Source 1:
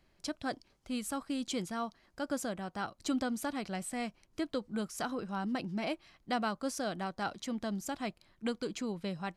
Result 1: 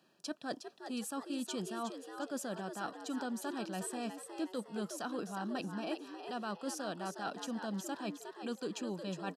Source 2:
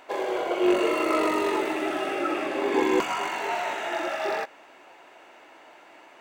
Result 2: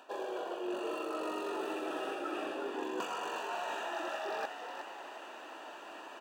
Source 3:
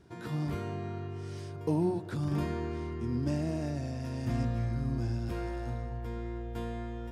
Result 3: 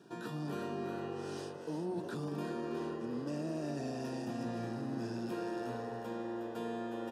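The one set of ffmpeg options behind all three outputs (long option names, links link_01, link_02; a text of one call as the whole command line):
ffmpeg -i in.wav -filter_complex "[0:a]highpass=frequency=170:width=0.5412,highpass=frequency=170:width=1.3066,areverse,acompressor=threshold=-38dB:ratio=10,areverse,asuperstop=centerf=2100:order=12:qfactor=4.9,asplit=6[link_01][link_02][link_03][link_04][link_05][link_06];[link_02]adelay=362,afreqshift=94,volume=-8dB[link_07];[link_03]adelay=724,afreqshift=188,volume=-15.5dB[link_08];[link_04]adelay=1086,afreqshift=282,volume=-23.1dB[link_09];[link_05]adelay=1448,afreqshift=376,volume=-30.6dB[link_10];[link_06]adelay=1810,afreqshift=470,volume=-38.1dB[link_11];[link_01][link_07][link_08][link_09][link_10][link_11]amix=inputs=6:normalize=0,volume=2.5dB" out.wav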